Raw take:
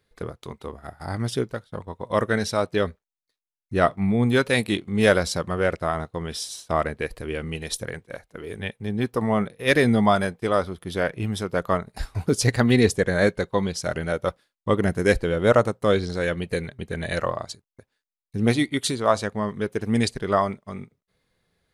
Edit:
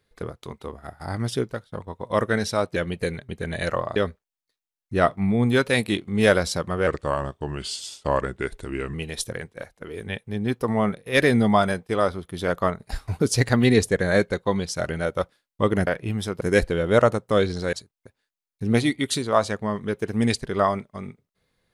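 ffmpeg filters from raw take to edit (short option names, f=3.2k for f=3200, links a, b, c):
-filter_complex "[0:a]asplit=9[a][b][c][d][e][f][g][h][i];[a]atrim=end=2.762[j];[b]atrim=start=16.258:end=17.462[k];[c]atrim=start=2.758:end=5.674[l];[d]atrim=start=5.67:end=7.47,asetpts=PTS-STARTPTS,asetrate=38367,aresample=44100,atrim=end_sample=91241,asetpts=PTS-STARTPTS[m];[e]atrim=start=7.466:end=11.012[n];[f]atrim=start=11.548:end=14.942[o];[g]atrim=start=11.008:end=11.552[p];[h]atrim=start=14.938:end=16.262[q];[i]atrim=start=17.458[r];[j][k]acrossfade=d=0.004:c1=hsin:c2=hsin[s];[s][l]acrossfade=d=0.004:c1=hsin:c2=hsin[t];[t][m]acrossfade=d=0.004:c1=hsin:c2=hsin[u];[u][n]acrossfade=d=0.004:c1=hsin:c2=hsin[v];[v][o]acrossfade=d=0.004:c1=hsin:c2=hsin[w];[w][p]acrossfade=d=0.004:c1=hsin:c2=hsin[x];[x][q]acrossfade=d=0.004:c1=hsin:c2=hsin[y];[y][r]acrossfade=d=0.004:c1=hsin:c2=hsin"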